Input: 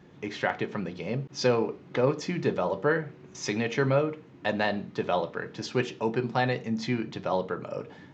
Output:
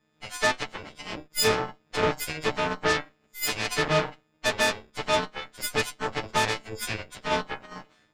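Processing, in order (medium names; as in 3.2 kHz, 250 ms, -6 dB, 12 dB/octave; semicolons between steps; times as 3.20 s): partials quantised in pitch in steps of 6 st; Chebyshev shaper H 7 -16 dB, 8 -16 dB, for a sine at -9.5 dBFS; trim -2 dB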